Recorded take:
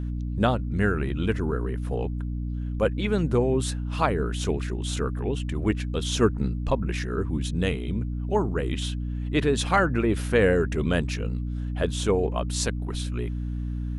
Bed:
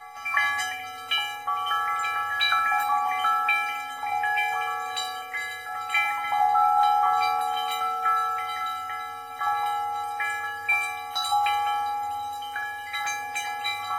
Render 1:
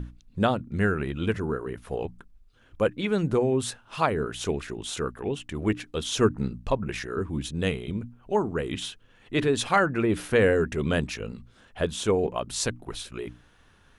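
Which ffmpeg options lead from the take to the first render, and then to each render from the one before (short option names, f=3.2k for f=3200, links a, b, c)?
-af "bandreject=f=60:t=h:w=6,bandreject=f=120:t=h:w=6,bandreject=f=180:t=h:w=6,bandreject=f=240:t=h:w=6,bandreject=f=300:t=h:w=6"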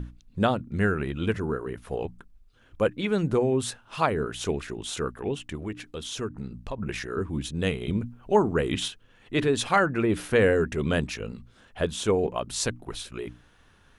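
-filter_complex "[0:a]asettb=1/sr,asplit=3[a][b][c];[a]atrim=end=5.554[d];[b]atrim=start=5.55:end=6.78,asetpts=PTS-STARTPTS,afade=t=in:d=0.004:c=qsin,afade=t=out:st=1.226:d=0.004:c=qsin,acompressor=threshold=-36dB:ratio=2:attack=3.2:release=140:knee=1:detection=peak[e];[c]atrim=start=6.776[f];[d][e]acrossfade=d=0.004:c1=hsin:c2=qsin[g];[g][f]acrossfade=d=0.004:c1=qsin:c2=hsin,asplit=3[h][i][j];[h]atrim=end=7.812[k];[i]atrim=start=7.808:end=8.882,asetpts=PTS-STARTPTS,volume=4dB[l];[j]atrim=start=8.878[m];[k][l]acrossfade=d=0.004:c1=hsin:c2=hsin[n];[n][m]acrossfade=d=0.004:c1=hsin:c2=hsin"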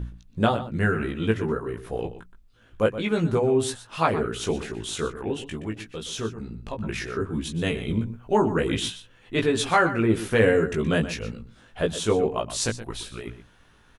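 -filter_complex "[0:a]asplit=2[a][b];[b]adelay=18,volume=-3dB[c];[a][c]amix=inputs=2:normalize=0,asplit=2[d][e];[e]adelay=122.4,volume=-13dB,highshelf=f=4k:g=-2.76[f];[d][f]amix=inputs=2:normalize=0"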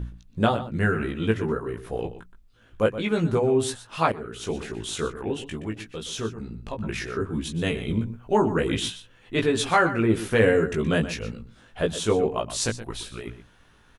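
-filter_complex "[0:a]asplit=2[a][b];[a]atrim=end=4.12,asetpts=PTS-STARTPTS,afade=t=out:st=4.116:d=0.004:c=hsin:silence=0.199526[c];[b]atrim=start=4.12,asetpts=PTS-STARTPTS,afade=t=in:d=0.63:silence=0.199526[d];[c][d]concat=n=2:v=0:a=1"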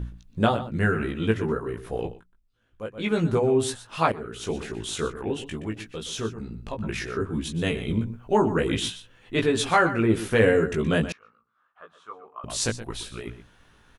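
-filter_complex "[0:a]asettb=1/sr,asplit=3[a][b][c];[a]atrim=end=11.124[d];[b]atrim=start=11.12:end=12.44,asetpts=PTS-STARTPTS,afade=t=in:d=0.004:c=qsin,afade=t=out:st=1.316:d=0.004:c=qsin,bandpass=f=1.2k:t=q:w=9.2[e];[c]atrim=start=12.436[f];[d][e]acrossfade=d=0.004:c1=hsin:c2=qsin[g];[g][f]acrossfade=d=0.004:c1=qsin:c2=hsin,asplit=3[h][i][j];[h]atrim=end=2.25,asetpts=PTS-STARTPTS,afade=t=out:st=2.12:d=0.13:c=qua:silence=0.223872[k];[i]atrim=start=2.25:end=2.91,asetpts=PTS-STARTPTS,volume=-13dB[l];[j]atrim=start=2.91,asetpts=PTS-STARTPTS,afade=t=in:d=0.13:c=qua:silence=0.223872[m];[k][l][m]concat=n=3:v=0:a=1"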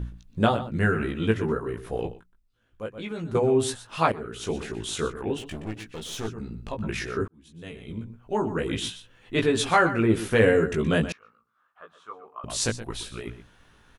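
-filter_complex "[0:a]asettb=1/sr,asplit=3[a][b][c];[a]atrim=end=2.934[d];[b]atrim=start=2.93:end=3.35,asetpts=PTS-STARTPTS,afade=t=in:d=0.004:c=qsin,afade=t=out:st=0.416:d=0.004:c=qsin,acompressor=threshold=-34dB:ratio=2.5:attack=3.2:release=140:knee=1:detection=peak[e];[c]atrim=start=3.346[f];[d][e]acrossfade=d=0.004:c1=hsin:c2=qsin[g];[g][f]acrossfade=d=0.004:c1=qsin:c2=hsin,asettb=1/sr,asplit=3[h][i][j];[h]atrim=end=5.384[k];[i]atrim=start=5.38:end=6.28,asetpts=PTS-STARTPTS,afade=t=in:d=0.004:c=qsin,afade=t=out:st=0.896:d=0.004:c=qsin,aeval=exprs='clip(val(0),-1,0.0119)':c=same[l];[j]atrim=start=6.276[m];[k][l]acrossfade=d=0.004:c1=hsin:c2=qsin[n];[n][m]acrossfade=d=0.004:c1=qsin:c2=hsin,asplit=2[o][p];[o]atrim=end=7.28,asetpts=PTS-STARTPTS,afade=t=out:st=7.276:d=0.004:c=hsin[q];[p]atrim=start=7.28,asetpts=PTS-STARTPTS,afade=t=in:d=2.11[r];[q][r]concat=n=2:v=0:a=1"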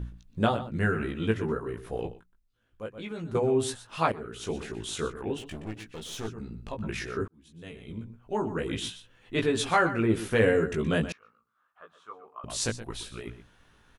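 -af "volume=-3.5dB"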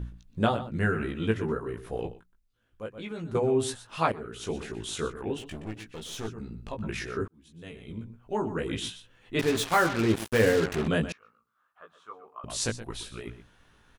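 -filter_complex "[0:a]asettb=1/sr,asplit=3[a][b][c];[a]atrim=end=9.394[d];[b]atrim=start=9.39:end=10.88,asetpts=PTS-STARTPTS,afade=t=in:d=0.004:c=qsin,afade=t=out:st=1.486:d=0.004:c=qsin,acrusher=bits=4:mix=0:aa=0.5[e];[c]atrim=start=10.876[f];[d][e]acrossfade=d=0.004:c1=hsin:c2=qsin[g];[g][f]acrossfade=d=0.004:c1=qsin:c2=hsin"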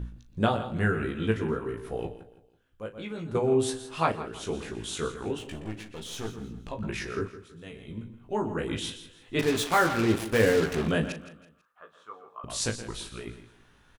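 -filter_complex "[0:a]asplit=2[a][b];[b]adelay=38,volume=-13dB[c];[a][c]amix=inputs=2:normalize=0,aecho=1:1:164|328|492:0.188|0.0678|0.0244"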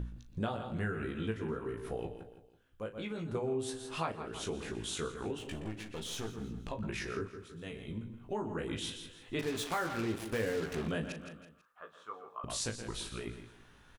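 -af "acompressor=threshold=-37dB:ratio=2.5"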